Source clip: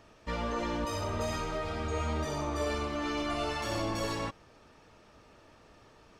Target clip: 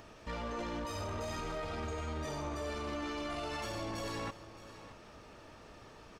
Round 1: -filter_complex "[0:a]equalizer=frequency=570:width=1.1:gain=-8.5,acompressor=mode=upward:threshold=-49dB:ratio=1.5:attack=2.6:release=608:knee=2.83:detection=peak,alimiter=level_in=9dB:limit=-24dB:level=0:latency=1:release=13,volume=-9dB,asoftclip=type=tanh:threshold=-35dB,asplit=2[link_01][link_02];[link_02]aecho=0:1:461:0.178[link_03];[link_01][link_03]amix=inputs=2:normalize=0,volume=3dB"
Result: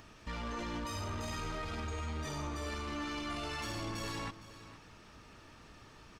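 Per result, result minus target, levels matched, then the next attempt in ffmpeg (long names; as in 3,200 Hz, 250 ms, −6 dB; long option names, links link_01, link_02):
echo 156 ms early; 500 Hz band −4.5 dB
-filter_complex "[0:a]equalizer=frequency=570:width=1.1:gain=-8.5,acompressor=mode=upward:threshold=-49dB:ratio=1.5:attack=2.6:release=608:knee=2.83:detection=peak,alimiter=level_in=9dB:limit=-24dB:level=0:latency=1:release=13,volume=-9dB,asoftclip=type=tanh:threshold=-35dB,asplit=2[link_01][link_02];[link_02]aecho=0:1:617:0.178[link_03];[link_01][link_03]amix=inputs=2:normalize=0,volume=3dB"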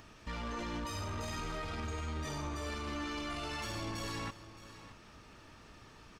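500 Hz band −4.5 dB
-filter_complex "[0:a]acompressor=mode=upward:threshold=-49dB:ratio=1.5:attack=2.6:release=608:knee=2.83:detection=peak,alimiter=level_in=9dB:limit=-24dB:level=0:latency=1:release=13,volume=-9dB,asoftclip=type=tanh:threshold=-35dB,asplit=2[link_01][link_02];[link_02]aecho=0:1:617:0.178[link_03];[link_01][link_03]amix=inputs=2:normalize=0,volume=3dB"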